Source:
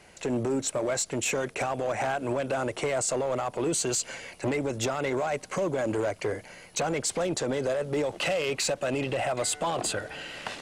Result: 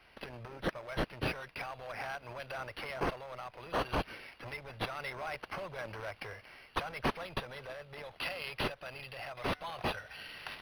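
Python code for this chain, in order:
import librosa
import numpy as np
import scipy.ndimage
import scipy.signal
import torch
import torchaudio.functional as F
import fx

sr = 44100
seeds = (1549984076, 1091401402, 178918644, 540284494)

y = fx.tone_stack(x, sr, knobs='10-0-10')
y = fx.rider(y, sr, range_db=5, speed_s=2.0)
y = np.interp(np.arange(len(y)), np.arange(len(y))[::6], y[::6])
y = F.gain(torch.from_numpy(y), -2.5).numpy()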